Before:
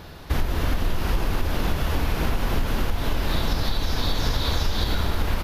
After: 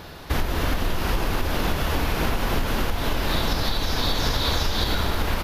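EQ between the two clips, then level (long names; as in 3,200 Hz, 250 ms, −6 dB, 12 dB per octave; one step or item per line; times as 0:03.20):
low-shelf EQ 200 Hz −5.5 dB
+3.5 dB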